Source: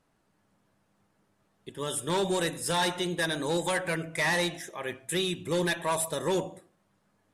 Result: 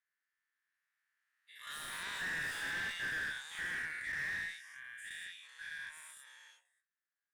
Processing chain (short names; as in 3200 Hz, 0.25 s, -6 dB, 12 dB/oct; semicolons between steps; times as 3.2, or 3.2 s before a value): spectral dilation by 0.24 s; Doppler pass-by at 2.23, 15 m/s, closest 1.7 m; compressor 6:1, threshold -36 dBFS, peak gain reduction 15.5 dB; ladder high-pass 1600 Hz, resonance 70%; tube stage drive 43 dB, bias 0.3; slew limiter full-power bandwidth 7.1 Hz; gain +13 dB